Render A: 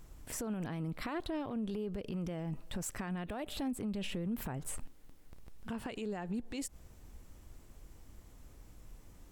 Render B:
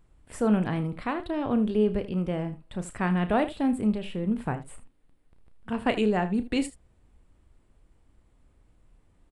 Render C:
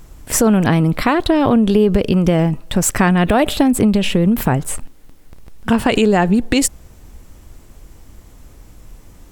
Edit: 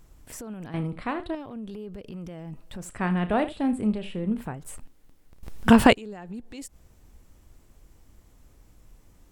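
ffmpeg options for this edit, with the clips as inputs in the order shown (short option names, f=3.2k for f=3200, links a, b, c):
-filter_complex "[1:a]asplit=2[a][b];[0:a]asplit=4[c][d][e][f];[c]atrim=end=0.742[g];[a]atrim=start=0.738:end=1.352[h];[d]atrim=start=1.348:end=2.99[i];[b]atrim=start=2.75:end=4.6[j];[e]atrim=start=4.36:end=5.432[k];[2:a]atrim=start=5.428:end=5.932[l];[f]atrim=start=5.928[m];[g][h]acrossfade=d=0.004:c1=hsin:c2=hsin[n];[n][i]acrossfade=d=0.004:c1=hsin:c2=hsin[o];[o][j]acrossfade=d=0.24:c1=tri:c2=tri[p];[p][k]acrossfade=d=0.24:c1=tri:c2=tri[q];[q][l]acrossfade=d=0.004:c1=hsin:c2=hsin[r];[r][m]acrossfade=d=0.004:c1=hsin:c2=hsin"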